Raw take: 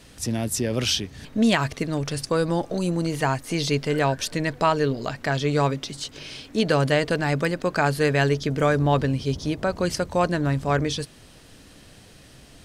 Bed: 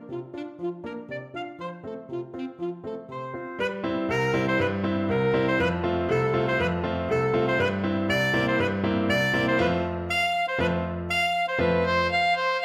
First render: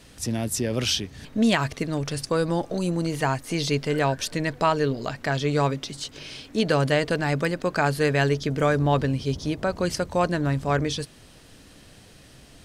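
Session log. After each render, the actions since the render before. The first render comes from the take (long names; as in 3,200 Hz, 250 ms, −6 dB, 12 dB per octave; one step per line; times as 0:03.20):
level −1 dB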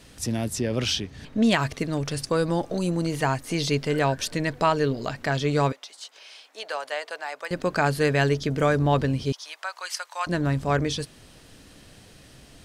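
0:00.48–0:01.51: high-shelf EQ 8,500 Hz −10 dB
0:05.72–0:07.51: four-pole ladder high-pass 580 Hz, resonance 30%
0:09.32–0:10.27: high-pass filter 930 Hz 24 dB per octave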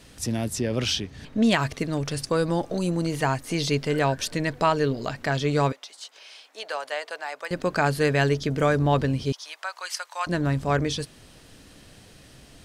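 no processing that can be heard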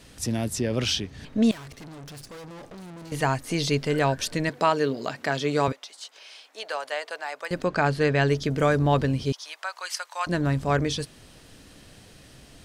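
0:01.51–0:03.12: tube saturation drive 40 dB, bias 0.65
0:04.49–0:05.68: high-pass filter 190 Hz
0:07.65–0:08.29: high-frequency loss of the air 77 metres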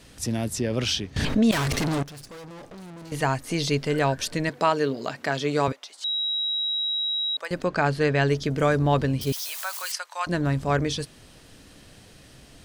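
0:01.16–0:02.03: envelope flattener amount 70%
0:06.04–0:07.37: beep over 3,850 Hz −23.5 dBFS
0:09.21–0:09.92: spike at every zero crossing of −27 dBFS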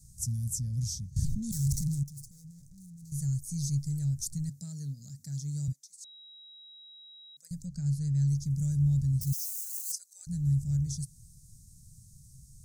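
elliptic band-stop filter 150–6,600 Hz, stop band 40 dB
parametric band 670 Hz −6 dB 0.23 octaves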